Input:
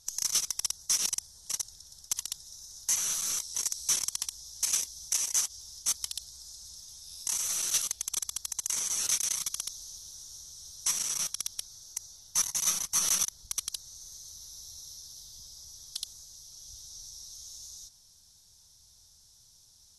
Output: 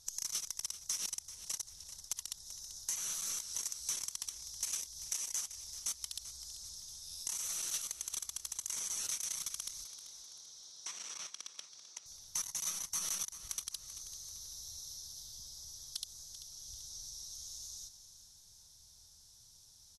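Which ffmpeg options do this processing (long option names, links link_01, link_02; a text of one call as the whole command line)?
ffmpeg -i in.wav -filter_complex "[0:a]acompressor=threshold=-36dB:ratio=3,asettb=1/sr,asplit=3[link_01][link_02][link_03];[link_01]atrim=end=9.844[link_04];[link_02]atrim=start=9.84:end=12.06,asetpts=PTS-STARTPTS,afade=type=in:duration=0.004:curve=qsin,afade=type=out:start_time=2.216:duration=0.004:curve=qsin,highpass=300,lowpass=4800[link_05];[link_03]atrim=start=12.056[link_06];[link_04][link_05]acrossfade=duration=0.004:curve1=hsin:curve2=qsin[link_07];[link_07][link_06]acrossfade=duration=0.004:curve1=qsin:curve2=hsin,aecho=1:1:388|776|1164|1552:0.224|0.094|0.0395|0.0166,volume=-1.5dB" out.wav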